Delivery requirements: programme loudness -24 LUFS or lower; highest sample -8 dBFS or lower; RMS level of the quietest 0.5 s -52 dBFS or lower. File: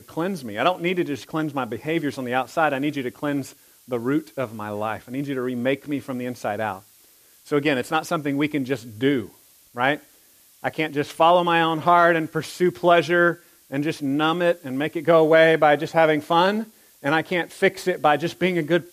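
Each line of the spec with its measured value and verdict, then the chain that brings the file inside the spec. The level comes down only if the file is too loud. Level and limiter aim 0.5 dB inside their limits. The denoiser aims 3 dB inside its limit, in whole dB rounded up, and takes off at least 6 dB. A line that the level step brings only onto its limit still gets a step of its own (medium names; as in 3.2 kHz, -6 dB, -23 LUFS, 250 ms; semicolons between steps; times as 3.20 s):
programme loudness -22.0 LUFS: fail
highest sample -4.5 dBFS: fail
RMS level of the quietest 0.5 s -55 dBFS: pass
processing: trim -2.5 dB; peak limiter -8.5 dBFS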